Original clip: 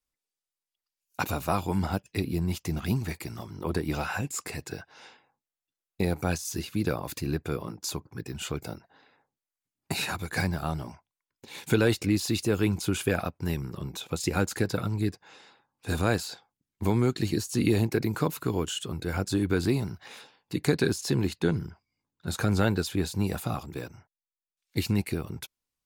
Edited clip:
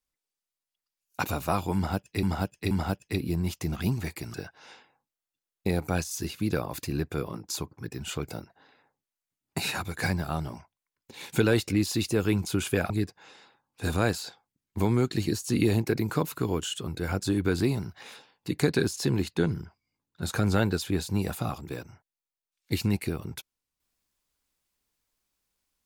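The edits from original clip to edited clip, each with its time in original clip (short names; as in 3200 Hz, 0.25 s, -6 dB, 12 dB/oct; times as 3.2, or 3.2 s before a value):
1.75–2.23 loop, 3 plays
3.38–4.68 cut
13.24–14.95 cut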